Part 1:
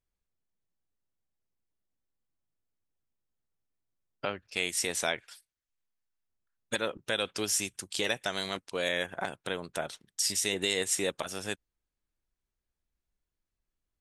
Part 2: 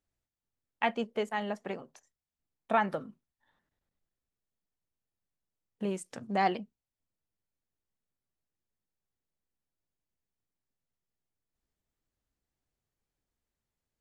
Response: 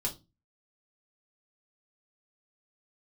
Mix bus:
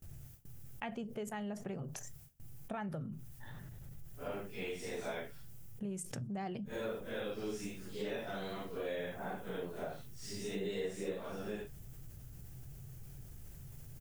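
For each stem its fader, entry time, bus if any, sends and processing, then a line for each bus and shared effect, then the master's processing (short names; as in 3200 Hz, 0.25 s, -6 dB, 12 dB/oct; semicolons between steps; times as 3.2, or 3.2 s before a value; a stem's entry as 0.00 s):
-2.0 dB, 0.05 s, no send, phase scrambler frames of 0.2 s; LPF 1000 Hz 6 dB/oct; small resonant body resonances 210/420 Hz, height 6 dB
-1.5 dB, 0.00 s, send -19.5 dB, graphic EQ 125/250/500/1000/2000/4000/8000 Hz +11/-8/-7/-12/-8/-12/-5 dB; fast leveller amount 70%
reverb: on, RT60 0.25 s, pre-delay 5 ms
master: gate with hold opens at -43 dBFS; compressor 2:1, threshold -40 dBFS, peak gain reduction 7.5 dB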